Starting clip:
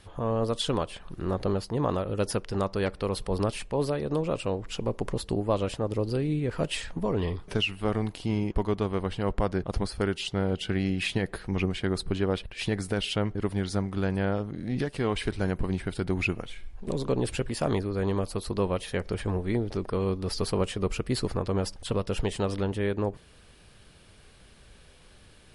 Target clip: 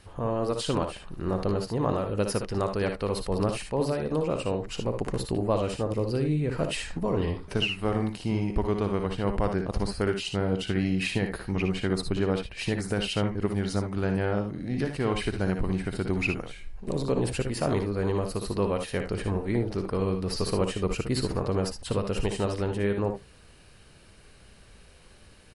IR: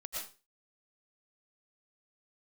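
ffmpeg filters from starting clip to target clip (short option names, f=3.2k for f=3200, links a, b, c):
-filter_complex "[0:a]bandreject=f=3.4k:w=10,asplit=2[a][b];[b]aecho=0:1:59|74:0.398|0.316[c];[a][c]amix=inputs=2:normalize=0"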